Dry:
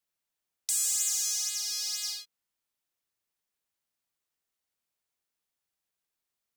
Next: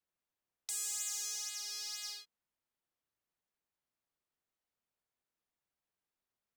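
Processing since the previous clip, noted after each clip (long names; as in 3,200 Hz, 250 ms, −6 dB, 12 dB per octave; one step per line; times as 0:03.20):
high-shelf EQ 2,600 Hz −11.5 dB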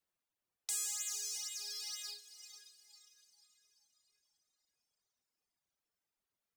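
feedback delay with all-pass diffusion 486 ms, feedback 43%, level −8 dB
reverb reduction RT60 1.8 s
level +2 dB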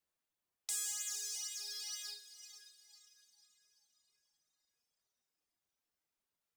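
tuned comb filter 79 Hz, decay 0.63 s, harmonics all, mix 70%
level +7 dB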